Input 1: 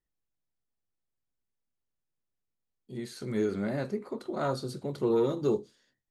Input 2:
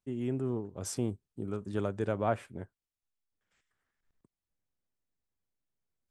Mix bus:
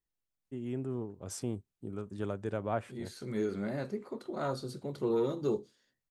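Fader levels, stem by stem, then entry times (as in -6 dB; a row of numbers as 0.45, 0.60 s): -4.0, -3.5 dB; 0.00, 0.45 s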